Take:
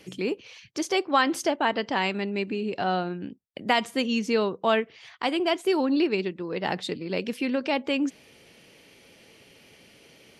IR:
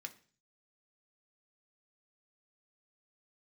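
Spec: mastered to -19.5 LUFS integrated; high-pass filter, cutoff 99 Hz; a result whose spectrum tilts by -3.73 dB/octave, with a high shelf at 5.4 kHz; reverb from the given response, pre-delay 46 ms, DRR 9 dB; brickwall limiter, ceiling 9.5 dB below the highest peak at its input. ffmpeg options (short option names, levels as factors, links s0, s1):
-filter_complex "[0:a]highpass=99,highshelf=f=5400:g=-8.5,alimiter=limit=0.119:level=0:latency=1,asplit=2[s0][s1];[1:a]atrim=start_sample=2205,adelay=46[s2];[s1][s2]afir=irnorm=-1:irlink=0,volume=0.531[s3];[s0][s3]amix=inputs=2:normalize=0,volume=3.16"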